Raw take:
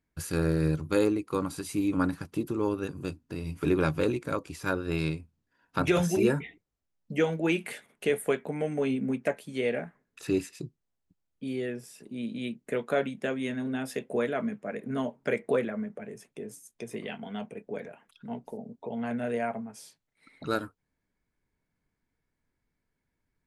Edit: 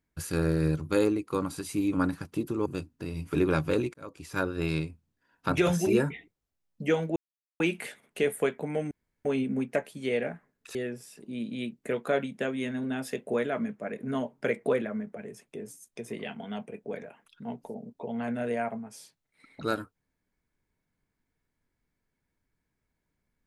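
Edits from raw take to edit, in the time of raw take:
0:02.66–0:02.96: remove
0:04.24–0:04.67: fade in linear
0:07.46: splice in silence 0.44 s
0:08.77: splice in room tone 0.34 s
0:10.27–0:11.58: remove

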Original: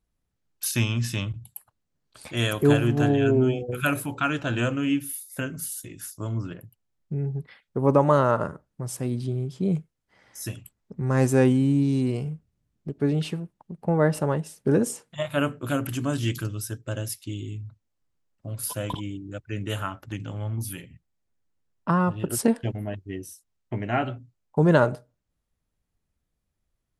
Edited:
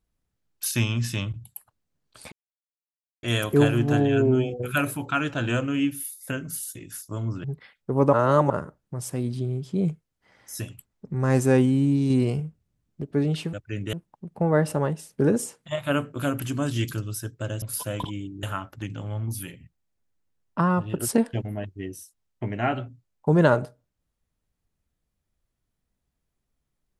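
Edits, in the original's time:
0:02.32: splice in silence 0.91 s
0:06.53–0:07.31: remove
0:08.00–0:08.37: reverse
0:11.97–0:12.27: clip gain +3.5 dB
0:17.09–0:18.52: remove
0:19.33–0:19.73: move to 0:13.40

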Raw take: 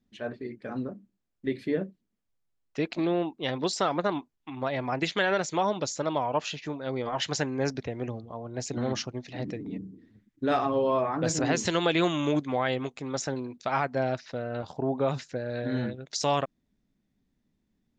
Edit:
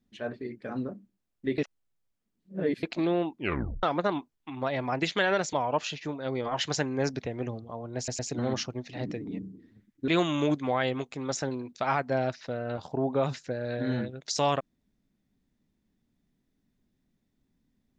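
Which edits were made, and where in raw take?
0:01.58–0:02.83: reverse
0:03.34: tape stop 0.49 s
0:05.53–0:06.14: remove
0:08.58: stutter 0.11 s, 3 plays
0:10.47–0:11.93: remove

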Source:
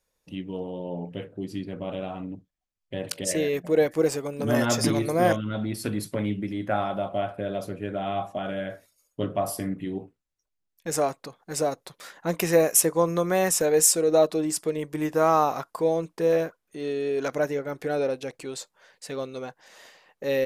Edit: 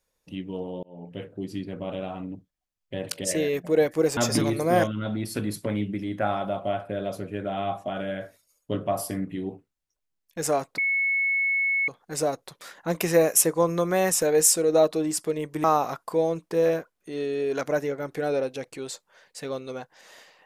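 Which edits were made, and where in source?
0:00.83–0:01.25: fade in linear
0:04.17–0:04.66: remove
0:11.27: insert tone 2,200 Hz −21 dBFS 1.10 s
0:15.03–0:15.31: remove

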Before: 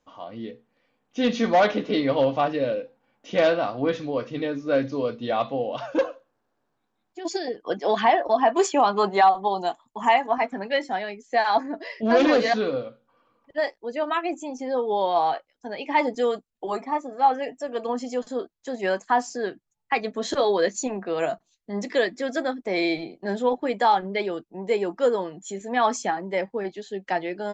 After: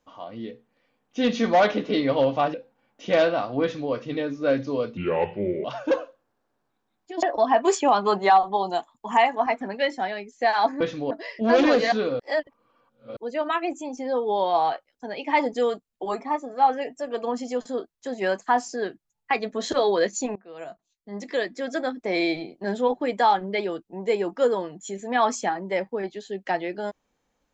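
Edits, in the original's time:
0:02.54–0:02.79: remove
0:03.87–0:04.17: duplicate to 0:11.72
0:05.22–0:05.72: play speed 74%
0:07.30–0:08.14: remove
0:12.81–0:13.78: reverse
0:20.97–0:22.64: fade in, from −22 dB

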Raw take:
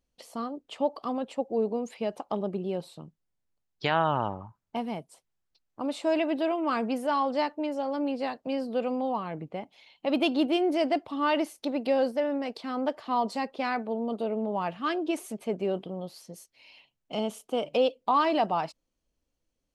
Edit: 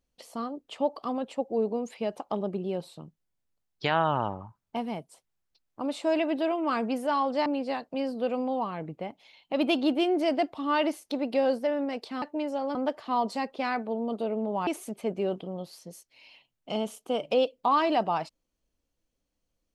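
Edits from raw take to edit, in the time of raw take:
0:07.46–0:07.99: move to 0:12.75
0:14.67–0:15.10: remove

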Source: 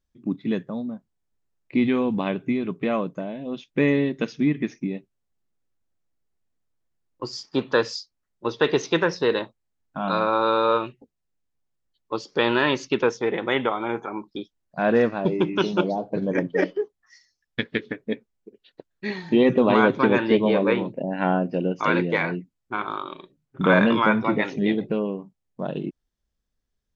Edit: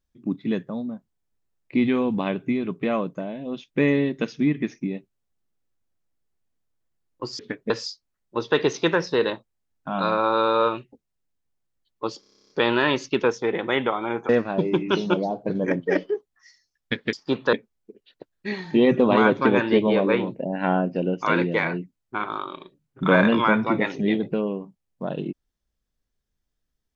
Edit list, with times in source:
0:07.39–0:07.79: swap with 0:17.80–0:18.11
0:12.29: stutter 0.03 s, 11 plays
0:14.08–0:14.96: remove

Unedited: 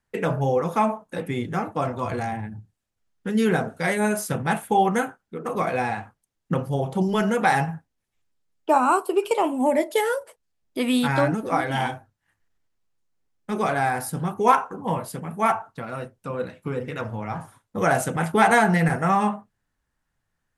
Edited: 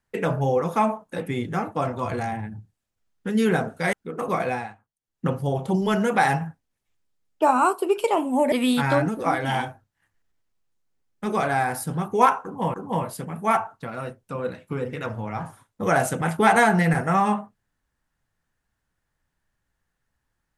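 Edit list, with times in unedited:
0:03.93–0:05.20: remove
0:05.72–0:06.56: duck −16.5 dB, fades 0.30 s
0:09.79–0:10.78: remove
0:14.69–0:15.00: repeat, 2 plays

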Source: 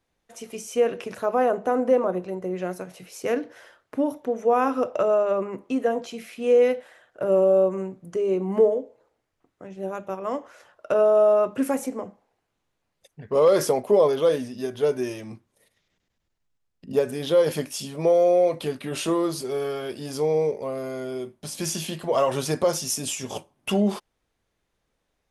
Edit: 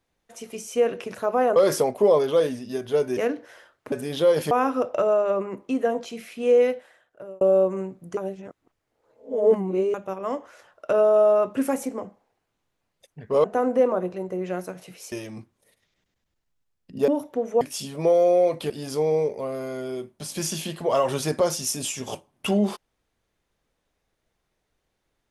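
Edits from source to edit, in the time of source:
0:01.56–0:03.24: swap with 0:13.45–0:15.06
0:03.99–0:04.52: swap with 0:17.02–0:17.61
0:06.58–0:07.42: fade out
0:08.18–0:09.95: reverse
0:18.70–0:19.93: remove

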